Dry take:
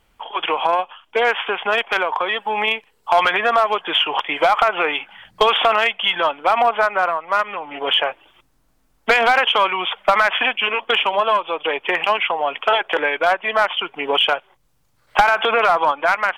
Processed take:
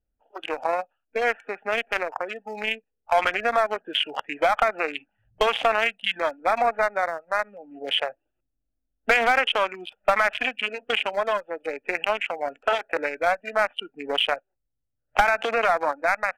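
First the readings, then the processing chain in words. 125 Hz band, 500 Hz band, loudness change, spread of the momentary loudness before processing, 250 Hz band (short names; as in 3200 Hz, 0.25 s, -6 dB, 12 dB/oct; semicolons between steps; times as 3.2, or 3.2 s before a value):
n/a, -5.0 dB, -6.5 dB, 7 LU, -5.0 dB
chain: Wiener smoothing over 41 samples; fifteen-band EQ 160 Hz -10 dB, 400 Hz -6 dB, 1000 Hz -7 dB, 4000 Hz -8 dB; spectral noise reduction 16 dB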